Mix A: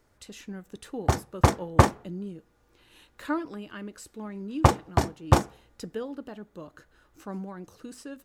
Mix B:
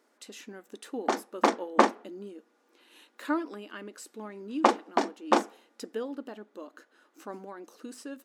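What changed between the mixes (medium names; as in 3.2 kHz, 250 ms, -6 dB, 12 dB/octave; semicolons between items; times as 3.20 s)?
background: add low-pass 5.3 kHz 12 dB/octave; master: add brick-wall FIR high-pass 210 Hz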